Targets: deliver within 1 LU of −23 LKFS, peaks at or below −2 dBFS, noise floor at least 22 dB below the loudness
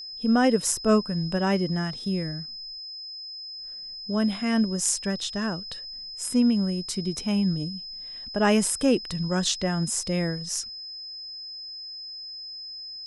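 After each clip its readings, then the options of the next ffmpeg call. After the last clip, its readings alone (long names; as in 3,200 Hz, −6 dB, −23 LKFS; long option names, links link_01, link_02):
interfering tone 5,100 Hz; level of the tone −36 dBFS; integrated loudness −27.0 LKFS; sample peak −7.0 dBFS; target loudness −23.0 LKFS
→ -af "bandreject=frequency=5100:width=30"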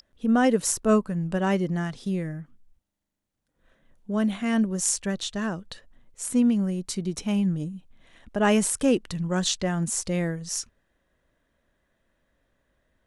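interfering tone none found; integrated loudness −25.5 LKFS; sample peak −7.0 dBFS; target loudness −23.0 LKFS
→ -af "volume=2.5dB"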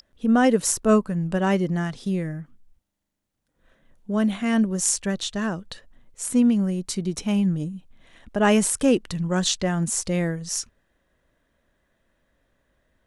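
integrated loudness −23.0 LKFS; sample peak −4.5 dBFS; background noise floor −78 dBFS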